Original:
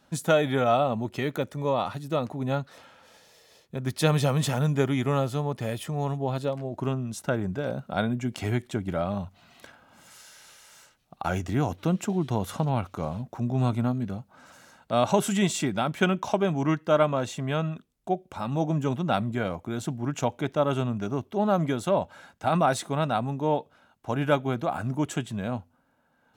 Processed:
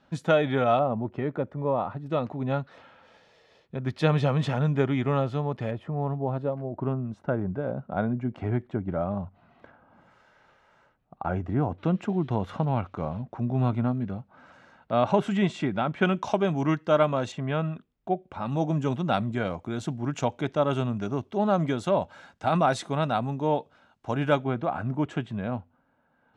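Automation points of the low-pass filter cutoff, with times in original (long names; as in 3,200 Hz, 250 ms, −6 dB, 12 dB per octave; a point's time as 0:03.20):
3,500 Hz
from 0:00.79 1,300 Hz
from 0:02.06 3,000 Hz
from 0:05.71 1,300 Hz
from 0:11.78 2,600 Hz
from 0:16.05 5,900 Hz
from 0:17.32 2,800 Hz
from 0:18.46 6,300 Hz
from 0:24.44 2,600 Hz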